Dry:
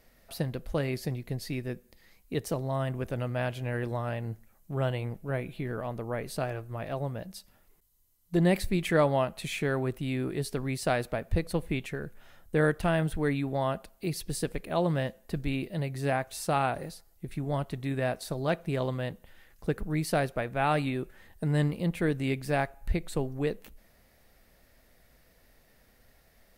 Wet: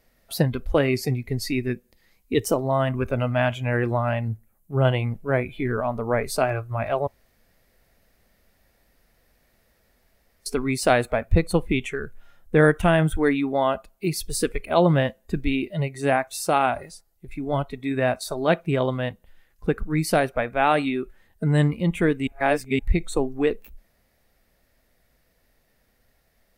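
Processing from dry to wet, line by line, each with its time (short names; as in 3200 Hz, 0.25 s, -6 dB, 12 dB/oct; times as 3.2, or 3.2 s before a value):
4.28–4.85 EQ curve 200 Hz 0 dB, 5700 Hz -7 dB, 10000 Hz +1 dB
7.07–10.46 room tone
22.27–22.79 reverse
whole clip: spectral noise reduction 13 dB; vocal rider within 3 dB 2 s; gain +8.5 dB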